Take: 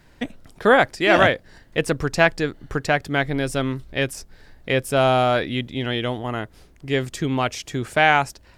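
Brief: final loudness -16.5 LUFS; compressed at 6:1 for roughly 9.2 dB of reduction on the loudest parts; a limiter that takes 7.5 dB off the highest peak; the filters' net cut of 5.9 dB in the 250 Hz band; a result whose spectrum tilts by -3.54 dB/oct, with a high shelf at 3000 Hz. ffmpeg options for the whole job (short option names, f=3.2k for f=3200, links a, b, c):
-af "equalizer=f=250:t=o:g=-8,highshelf=f=3k:g=5.5,acompressor=threshold=-20dB:ratio=6,volume=12dB,alimiter=limit=-3dB:level=0:latency=1"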